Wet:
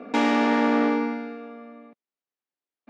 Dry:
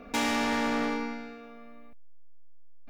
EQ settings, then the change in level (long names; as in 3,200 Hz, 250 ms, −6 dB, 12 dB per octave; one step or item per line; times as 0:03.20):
high-pass filter 240 Hz 24 dB per octave
head-to-tape spacing loss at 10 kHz 22 dB
low-shelf EQ 360 Hz +6 dB
+7.5 dB